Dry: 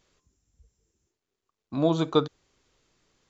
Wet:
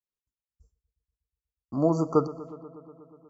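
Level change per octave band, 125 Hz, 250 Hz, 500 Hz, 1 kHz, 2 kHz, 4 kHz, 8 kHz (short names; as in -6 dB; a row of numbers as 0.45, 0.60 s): 0.0 dB, 0.0 dB, 0.0 dB, 0.0 dB, under -15 dB, under -20 dB, n/a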